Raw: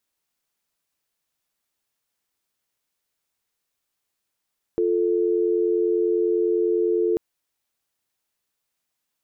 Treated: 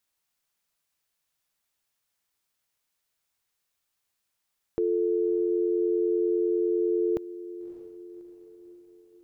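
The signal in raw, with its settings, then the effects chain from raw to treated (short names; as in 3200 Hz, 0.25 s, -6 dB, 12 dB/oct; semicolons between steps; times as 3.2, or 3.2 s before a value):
call progress tone dial tone, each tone -21 dBFS 2.39 s
bell 330 Hz -4.5 dB 1.8 oct; diffused feedback echo 0.599 s, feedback 53%, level -15 dB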